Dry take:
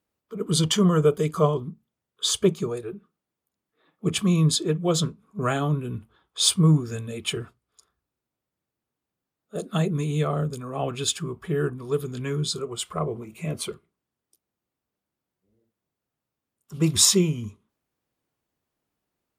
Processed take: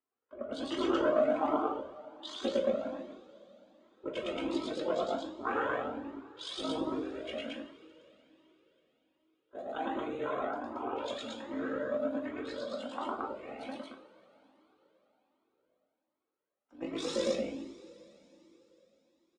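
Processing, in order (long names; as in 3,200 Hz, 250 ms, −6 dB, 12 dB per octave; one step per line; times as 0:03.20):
amplitude modulation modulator 51 Hz, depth 55%
loudspeakers that aren't time-aligned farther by 37 metres 0 dB, 77 metres −1 dB
ring modulation 160 Hz
band-pass filter 310–2,000 Hz
coupled-rooms reverb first 0.37 s, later 4.2 s, from −22 dB, DRR 1.5 dB
flanger whose copies keep moving one way rising 1.3 Hz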